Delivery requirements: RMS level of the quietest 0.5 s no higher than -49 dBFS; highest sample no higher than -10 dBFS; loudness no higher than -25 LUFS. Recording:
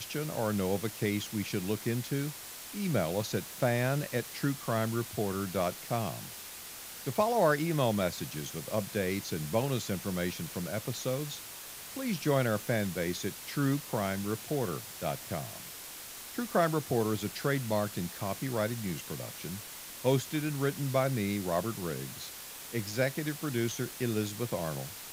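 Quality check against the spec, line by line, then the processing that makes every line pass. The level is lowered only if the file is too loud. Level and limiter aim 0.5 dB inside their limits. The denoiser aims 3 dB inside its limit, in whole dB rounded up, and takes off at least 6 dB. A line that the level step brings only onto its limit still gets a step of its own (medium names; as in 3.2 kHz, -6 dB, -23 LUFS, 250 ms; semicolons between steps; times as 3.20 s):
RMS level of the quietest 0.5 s -45 dBFS: fail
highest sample -12.5 dBFS: pass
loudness -33.0 LUFS: pass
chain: noise reduction 7 dB, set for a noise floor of -45 dBFS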